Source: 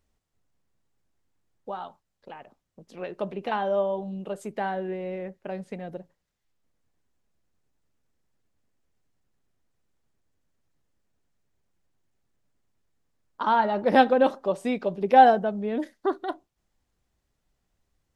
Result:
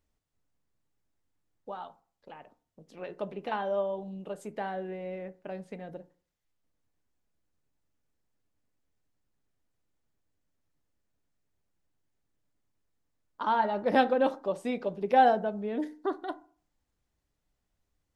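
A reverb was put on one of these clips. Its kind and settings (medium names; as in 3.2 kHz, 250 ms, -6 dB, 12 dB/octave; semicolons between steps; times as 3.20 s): FDN reverb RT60 0.44 s, low-frequency decay 1.05×, high-frequency decay 0.45×, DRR 12.5 dB; trim -5 dB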